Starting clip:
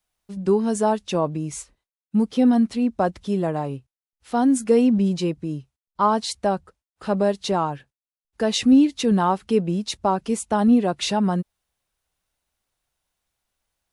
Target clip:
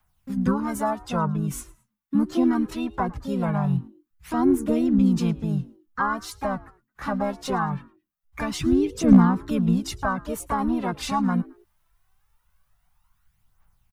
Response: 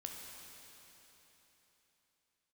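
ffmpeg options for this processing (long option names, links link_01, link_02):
-filter_complex "[0:a]aphaser=in_gain=1:out_gain=1:delay=3.9:decay=0.6:speed=0.22:type=triangular,equalizer=frequency=125:width_type=o:width=1:gain=9,equalizer=frequency=250:width_type=o:width=1:gain=-11,equalizer=frequency=500:width_type=o:width=1:gain=-11,equalizer=frequency=1000:width_type=o:width=1:gain=6,equalizer=frequency=2000:width_type=o:width=1:gain=-4,equalizer=frequency=4000:width_type=o:width=1:gain=-8,equalizer=frequency=8000:width_type=o:width=1:gain=-8,acrossover=split=250[link_01][link_02];[link_02]acompressor=threshold=-42dB:ratio=2[link_03];[link_01][link_03]amix=inputs=2:normalize=0,asplit=2[link_04][link_05];[link_05]asetrate=58866,aresample=44100,atempo=0.749154,volume=-3dB[link_06];[link_04][link_06]amix=inputs=2:normalize=0,asoftclip=type=hard:threshold=-10.5dB,asubboost=boost=2:cutoff=54,asplit=2[link_07][link_08];[link_08]asplit=2[link_09][link_10];[link_09]adelay=109,afreqshift=87,volume=-23dB[link_11];[link_10]adelay=218,afreqshift=174,volume=-33.2dB[link_12];[link_11][link_12]amix=inputs=2:normalize=0[link_13];[link_07][link_13]amix=inputs=2:normalize=0,volume=6dB"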